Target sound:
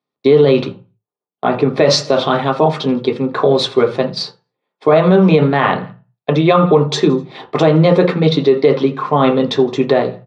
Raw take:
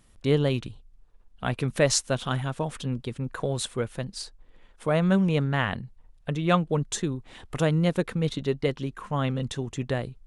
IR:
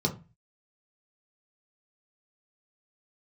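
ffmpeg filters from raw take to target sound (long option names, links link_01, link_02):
-filter_complex "[0:a]highpass=520,lowpass=3300,aecho=1:1:83|166|249:0.0708|0.0361|0.0184,agate=range=-33dB:threshold=-46dB:ratio=3:detection=peak,asplit=3[link_01][link_02][link_03];[link_01]afade=type=out:start_time=0.69:duration=0.02[link_04];[link_02]highshelf=frequency=2200:gain=-11,afade=type=in:start_time=0.69:duration=0.02,afade=type=out:start_time=1.78:duration=0.02[link_05];[link_03]afade=type=in:start_time=1.78:duration=0.02[link_06];[link_04][link_05][link_06]amix=inputs=3:normalize=0[link_07];[1:a]atrim=start_sample=2205[link_08];[link_07][link_08]afir=irnorm=-1:irlink=0,alimiter=level_in=12.5dB:limit=-1dB:release=50:level=0:latency=1,volume=-1dB"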